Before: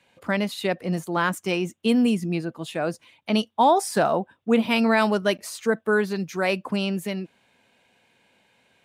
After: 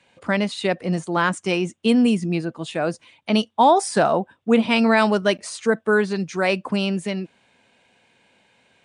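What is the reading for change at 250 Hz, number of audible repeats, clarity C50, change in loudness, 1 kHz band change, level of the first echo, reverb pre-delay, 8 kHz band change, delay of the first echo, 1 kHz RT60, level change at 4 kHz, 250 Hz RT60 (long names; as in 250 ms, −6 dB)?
+3.0 dB, no echo audible, no reverb audible, +3.0 dB, +3.0 dB, no echo audible, no reverb audible, +2.5 dB, no echo audible, no reverb audible, +3.0 dB, no reverb audible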